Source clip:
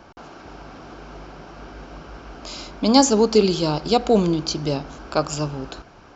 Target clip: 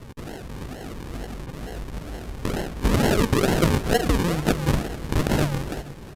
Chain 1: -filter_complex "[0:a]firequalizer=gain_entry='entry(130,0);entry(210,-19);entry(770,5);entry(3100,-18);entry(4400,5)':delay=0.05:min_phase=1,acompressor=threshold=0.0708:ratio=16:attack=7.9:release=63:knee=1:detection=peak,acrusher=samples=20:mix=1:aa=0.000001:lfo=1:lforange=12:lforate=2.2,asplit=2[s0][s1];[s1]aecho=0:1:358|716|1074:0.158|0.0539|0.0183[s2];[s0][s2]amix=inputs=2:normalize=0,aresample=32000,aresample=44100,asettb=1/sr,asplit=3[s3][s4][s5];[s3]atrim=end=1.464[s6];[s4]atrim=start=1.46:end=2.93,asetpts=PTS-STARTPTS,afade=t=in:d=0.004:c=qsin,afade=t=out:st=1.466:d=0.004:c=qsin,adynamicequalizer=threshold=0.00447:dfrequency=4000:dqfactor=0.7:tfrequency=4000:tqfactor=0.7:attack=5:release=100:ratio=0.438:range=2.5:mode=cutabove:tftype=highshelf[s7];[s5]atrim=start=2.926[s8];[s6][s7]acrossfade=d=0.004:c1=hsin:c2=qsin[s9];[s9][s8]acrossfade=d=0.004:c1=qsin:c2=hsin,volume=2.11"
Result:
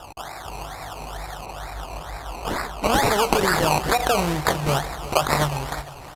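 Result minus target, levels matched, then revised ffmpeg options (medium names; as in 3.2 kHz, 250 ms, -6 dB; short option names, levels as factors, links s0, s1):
decimation with a swept rate: distortion -11 dB
-filter_complex "[0:a]firequalizer=gain_entry='entry(130,0);entry(210,-19);entry(770,5);entry(3100,-18);entry(4400,5)':delay=0.05:min_phase=1,acompressor=threshold=0.0708:ratio=16:attack=7.9:release=63:knee=1:detection=peak,acrusher=samples=52:mix=1:aa=0.000001:lfo=1:lforange=31.2:lforate=2.2,asplit=2[s0][s1];[s1]aecho=0:1:358|716|1074:0.158|0.0539|0.0183[s2];[s0][s2]amix=inputs=2:normalize=0,aresample=32000,aresample=44100,asettb=1/sr,asplit=3[s3][s4][s5];[s3]atrim=end=1.464[s6];[s4]atrim=start=1.46:end=2.93,asetpts=PTS-STARTPTS,afade=t=in:d=0.004:c=qsin,afade=t=out:st=1.466:d=0.004:c=qsin,adynamicequalizer=threshold=0.00447:dfrequency=4000:dqfactor=0.7:tfrequency=4000:tqfactor=0.7:attack=5:release=100:ratio=0.438:range=2.5:mode=cutabove:tftype=highshelf[s7];[s5]atrim=start=2.926[s8];[s6][s7]acrossfade=d=0.004:c1=hsin:c2=qsin[s9];[s9][s8]acrossfade=d=0.004:c1=qsin:c2=hsin,volume=2.11"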